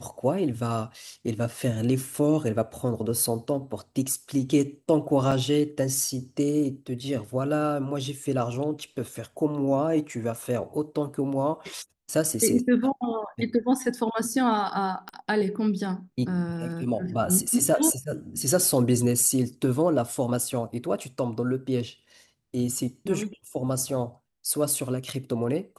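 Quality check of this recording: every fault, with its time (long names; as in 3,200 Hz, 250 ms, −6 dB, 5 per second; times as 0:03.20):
0:05.31–0:05.32: drop-out 5.8 ms
0:15.09: click −22 dBFS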